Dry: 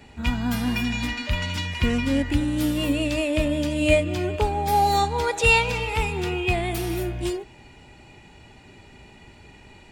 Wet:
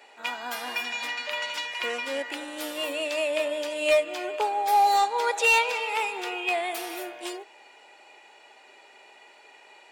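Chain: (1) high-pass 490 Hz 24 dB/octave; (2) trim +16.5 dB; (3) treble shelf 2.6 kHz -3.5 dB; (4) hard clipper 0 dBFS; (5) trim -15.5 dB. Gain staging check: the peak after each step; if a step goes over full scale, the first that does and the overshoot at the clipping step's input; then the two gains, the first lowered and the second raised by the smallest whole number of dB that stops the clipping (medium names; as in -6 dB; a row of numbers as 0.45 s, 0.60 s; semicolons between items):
-9.0 dBFS, +7.5 dBFS, +6.5 dBFS, 0.0 dBFS, -15.5 dBFS; step 2, 6.5 dB; step 2 +9.5 dB, step 5 -8.5 dB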